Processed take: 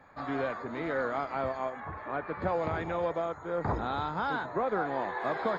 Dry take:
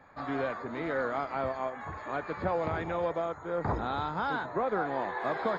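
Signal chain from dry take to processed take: 1.8–2.42 LPF 2600 Hz 12 dB/oct

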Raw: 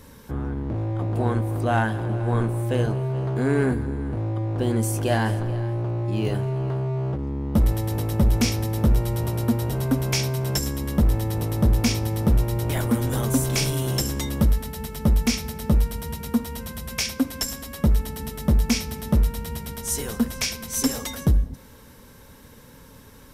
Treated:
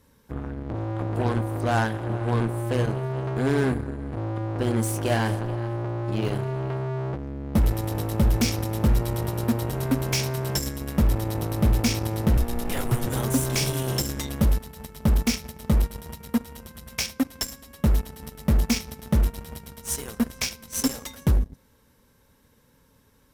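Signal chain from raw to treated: added harmonics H 5 -31 dB, 7 -18 dB, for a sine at -12.5 dBFS; 12.37–13.07 frequency shift -110 Hz; gain -1.5 dB

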